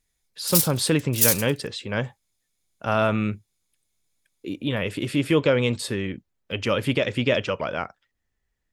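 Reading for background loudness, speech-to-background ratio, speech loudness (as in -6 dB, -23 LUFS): -21.5 LUFS, -3.5 dB, -25.0 LUFS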